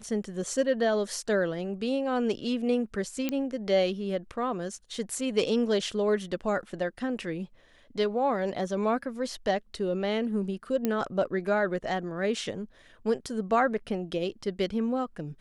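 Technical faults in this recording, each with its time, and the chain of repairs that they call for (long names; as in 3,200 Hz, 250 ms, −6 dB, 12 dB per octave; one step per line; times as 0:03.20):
0:03.29: click −15 dBFS
0:10.85: click −14 dBFS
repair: click removal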